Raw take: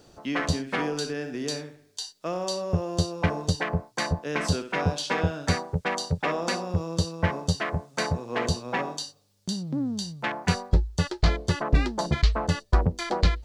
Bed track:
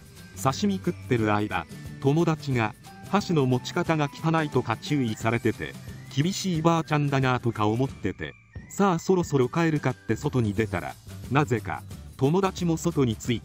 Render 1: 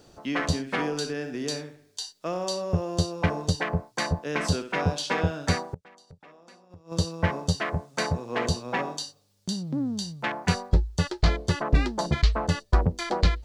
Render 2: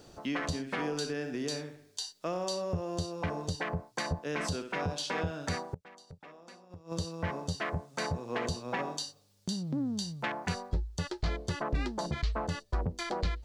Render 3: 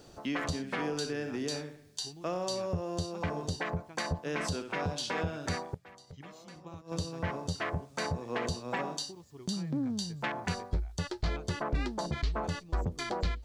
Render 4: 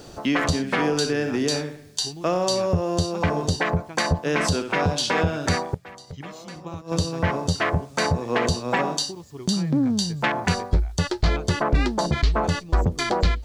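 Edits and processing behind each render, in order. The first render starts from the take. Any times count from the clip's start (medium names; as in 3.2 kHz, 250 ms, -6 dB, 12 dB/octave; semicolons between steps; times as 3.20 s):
5.63–6.92 s: inverted gate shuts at -23 dBFS, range -25 dB
compression 1.5:1, threshold -37 dBFS, peak gain reduction 8 dB; peak limiter -22 dBFS, peak gain reduction 6 dB
add bed track -27.5 dB
trim +11.5 dB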